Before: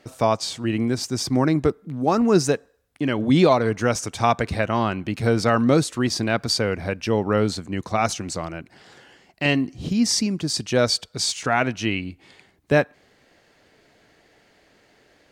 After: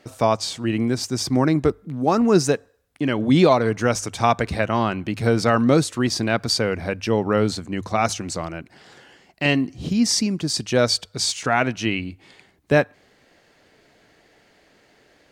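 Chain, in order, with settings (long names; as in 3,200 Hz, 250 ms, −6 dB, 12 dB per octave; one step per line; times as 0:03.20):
mains-hum notches 50/100 Hz
level +1 dB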